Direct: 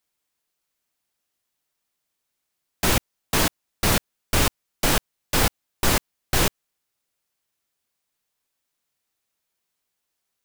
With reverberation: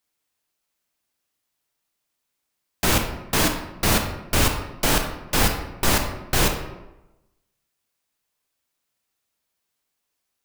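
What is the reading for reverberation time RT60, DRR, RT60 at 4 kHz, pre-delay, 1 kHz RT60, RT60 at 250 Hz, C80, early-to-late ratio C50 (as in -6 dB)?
1.0 s, 4.5 dB, 0.60 s, 23 ms, 1.0 s, 1.0 s, 9.0 dB, 6.5 dB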